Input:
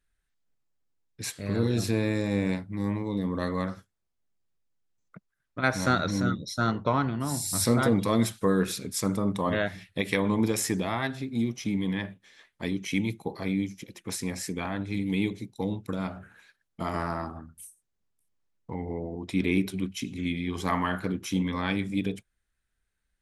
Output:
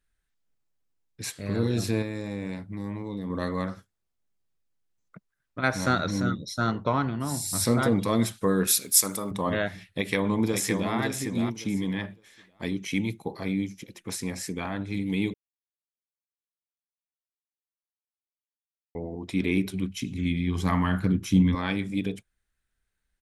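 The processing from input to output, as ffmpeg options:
-filter_complex "[0:a]asettb=1/sr,asplit=3[s0][s1][s2];[s0]atrim=end=2.024[s3];[s1]atrim=start=2.02:end=3.3,asetpts=PTS-STARTPTS,afade=t=in:d=0.004:c=qsin,afade=t=out:st=1.276:d=0.004:c=qsin,acompressor=threshold=0.0282:ratio=2.5:attack=3.2:release=140:knee=1:detection=peak[s4];[s2]atrim=start=3.296[s5];[s3][s4]acrossfade=d=0.004:c1=hsin:c2=qsin[s6];[s6][s5]acrossfade=d=0.004:c1=qsin:c2=hsin,asettb=1/sr,asplit=3[s7][s8][s9];[s7]atrim=end=8.674[s10];[s8]atrim=start=8.67:end=9.31,asetpts=PTS-STARTPTS,afade=t=in:d=0.004:c=qsin,afade=t=out:st=0.636:d=0.004:c=qsin,aemphasis=mode=production:type=riaa[s11];[s9]atrim=start=9.306[s12];[s10][s11]acrossfade=d=0.004:c1=hsin:c2=qsin[s13];[s13][s12]acrossfade=d=0.004:c1=qsin:c2=hsin,asplit=2[s14][s15];[s15]afade=t=in:st=9.87:d=0.01,afade=t=out:st=10.93:d=0.01,aecho=0:1:560|1120|1680:0.530884|0.106177|0.0212354[s16];[s14][s16]amix=inputs=2:normalize=0,asettb=1/sr,asplit=3[s17][s18][s19];[s17]atrim=end=19.514[s20];[s18]atrim=start=19.51:end=21.55,asetpts=PTS-STARTPTS,afade=t=in:d=0.004:c=qsin,afade=t=out:st=2.036:d=0.004:c=qsin,asubboost=boost=7:cutoff=240[s21];[s19]atrim=start=21.546[s22];[s20][s21]acrossfade=d=0.004:c1=hsin:c2=qsin[s23];[s23][s22]acrossfade=d=0.004:c1=qsin:c2=hsin,asplit=3[s24][s25][s26];[s24]atrim=end=15.34,asetpts=PTS-STARTPTS,afade=t=out:st=15.336:d=0.004:c=hsin[s27];[s25]atrim=start=15.34:end=18.95,asetpts=PTS-STARTPTS,volume=0[s28];[s26]atrim=start=18.95,asetpts=PTS-STARTPTS,afade=t=in:d=0.004:c=hsin[s29];[s27][s28][s29]concat=n=3:v=0:a=1"

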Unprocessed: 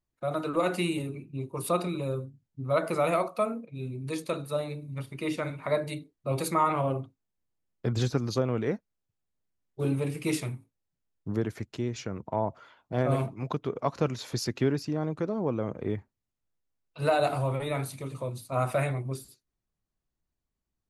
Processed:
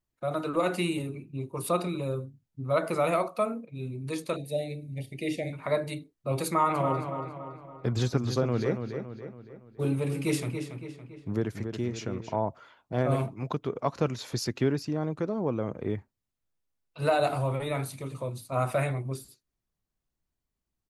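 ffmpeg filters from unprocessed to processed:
-filter_complex "[0:a]asettb=1/sr,asplit=3[s0][s1][s2];[s0]atrim=end=4.364[s3];[s1]atrim=start=4.36:end=5.53,asetpts=PTS-STARTPTS,afade=t=in:d=0.004:c=qsin,afade=t=out:st=1.166:d=0.004:c=qsin,asuperstop=centerf=1200:order=12:qfactor=1.2[s4];[s2]atrim=start=5.526[s5];[s3][s4]acrossfade=d=0.004:c1=hsin:c2=qsin[s6];[s6][s5]acrossfade=d=0.004:c1=qsin:c2=hsin,asplit=3[s7][s8][s9];[s7]afade=t=out:st=6.74:d=0.02[s10];[s8]asplit=2[s11][s12];[s12]adelay=281,lowpass=f=4300:p=1,volume=0.422,asplit=2[s13][s14];[s14]adelay=281,lowpass=f=4300:p=1,volume=0.49,asplit=2[s15][s16];[s16]adelay=281,lowpass=f=4300:p=1,volume=0.49,asplit=2[s17][s18];[s18]adelay=281,lowpass=f=4300:p=1,volume=0.49,asplit=2[s19][s20];[s20]adelay=281,lowpass=f=4300:p=1,volume=0.49,asplit=2[s21][s22];[s22]adelay=281,lowpass=f=4300:p=1,volume=0.49[s23];[s11][s13][s15][s17][s19][s21][s23]amix=inputs=7:normalize=0,afade=t=in:st=6.74:d=0.02,afade=t=out:st=12.34:d=0.02[s24];[s9]afade=t=in:st=12.34:d=0.02[s25];[s10][s24][s25]amix=inputs=3:normalize=0"

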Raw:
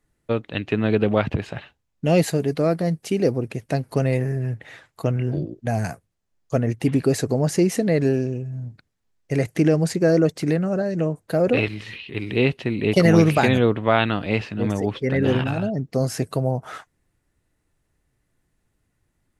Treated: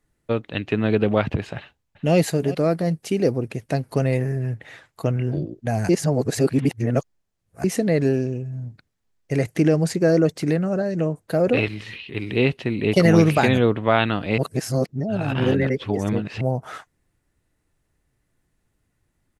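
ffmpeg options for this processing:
-filter_complex "[0:a]asplit=2[s0][s1];[s1]afade=t=in:st=1.57:d=0.01,afade=t=out:st=2.16:d=0.01,aecho=0:1:380|760:0.188365|0.0282547[s2];[s0][s2]amix=inputs=2:normalize=0,asplit=5[s3][s4][s5][s6][s7];[s3]atrim=end=5.892[s8];[s4]atrim=start=5.888:end=7.642,asetpts=PTS-STARTPTS,areverse[s9];[s5]atrim=start=7.638:end=14.382[s10];[s6]atrim=start=14.378:end=16.412,asetpts=PTS-STARTPTS,areverse[s11];[s7]atrim=start=16.408[s12];[s8][s9]acrossfade=d=0.004:c1=hsin:c2=hsin[s13];[s13][s10]acrossfade=d=0.004:c1=hsin:c2=hsin[s14];[s14][s11]acrossfade=d=0.004:c1=hsin:c2=hsin[s15];[s15][s12]acrossfade=d=0.004:c1=hsin:c2=hsin"

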